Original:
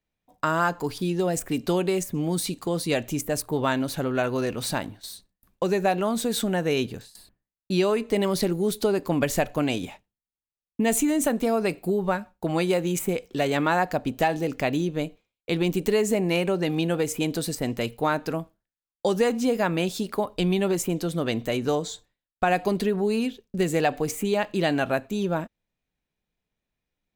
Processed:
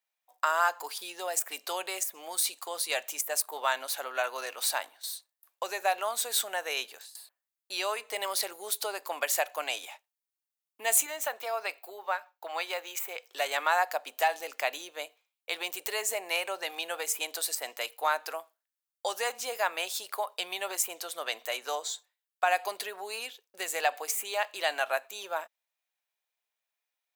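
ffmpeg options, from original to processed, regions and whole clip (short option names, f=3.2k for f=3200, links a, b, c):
-filter_complex "[0:a]asettb=1/sr,asplit=3[a][b][c];[a]atrim=end=11.064[d];[b]atrim=start=11.06:end=13.26,asetpts=PTS-STARTPTS,afade=t=in:d=0.004:c=qsin,afade=t=out:st=2.196:d=0.004:c=qsin,highpass=f=450:p=1,equalizer=f=9.6k:w=1:g=-12.5[e];[c]atrim=start=13.256[f];[d][e]acrossfade=d=0.004:c1=hsin:c2=qsin[g];[g][f]acrossfade=d=0.004:c1=qsin:c2=hsin,highpass=f=670:w=0.5412,highpass=f=670:w=1.3066,highshelf=f=8.1k:g=8,volume=-1.5dB"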